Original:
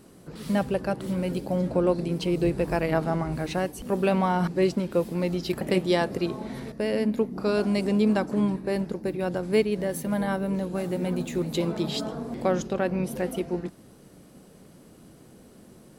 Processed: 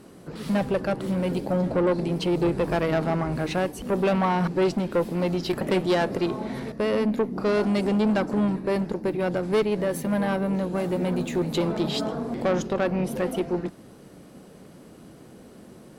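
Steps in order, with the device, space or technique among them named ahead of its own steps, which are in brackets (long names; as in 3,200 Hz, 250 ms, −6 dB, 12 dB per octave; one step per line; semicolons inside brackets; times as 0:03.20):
tube preamp driven hard (tube saturation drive 22 dB, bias 0.25; low-shelf EQ 150 Hz −5 dB; high-shelf EQ 4,900 Hz −7 dB)
level +6 dB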